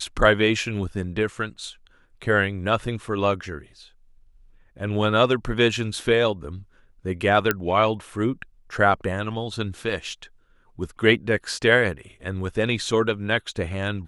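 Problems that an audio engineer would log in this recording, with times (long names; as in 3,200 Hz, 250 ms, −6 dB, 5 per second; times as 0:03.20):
0:07.51: click −6 dBFS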